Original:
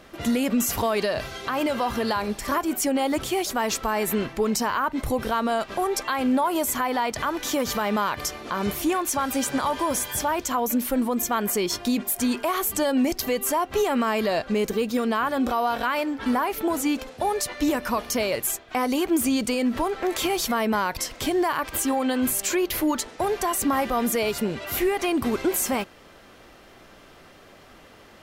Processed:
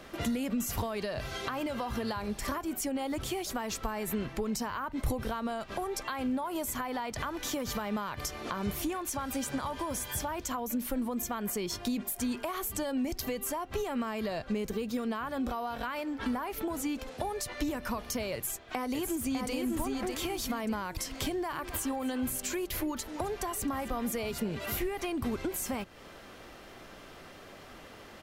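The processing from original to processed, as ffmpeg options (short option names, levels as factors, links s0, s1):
-filter_complex "[0:a]asplit=2[s0][s1];[s1]afade=t=in:st=18.34:d=0.01,afade=t=out:st=19.54:d=0.01,aecho=0:1:600|1200|1800|2400|3000:0.707946|0.247781|0.0867234|0.0303532|0.0106236[s2];[s0][s2]amix=inputs=2:normalize=0,asplit=3[s3][s4][s5];[s3]afade=t=out:st=21.49:d=0.02[s6];[s4]aecho=1:1:264:0.141,afade=t=in:st=21.49:d=0.02,afade=t=out:st=24.99:d=0.02[s7];[s5]afade=t=in:st=24.99:d=0.02[s8];[s6][s7][s8]amix=inputs=3:normalize=0,acrossover=split=150[s9][s10];[s10]acompressor=threshold=0.0224:ratio=6[s11];[s9][s11]amix=inputs=2:normalize=0"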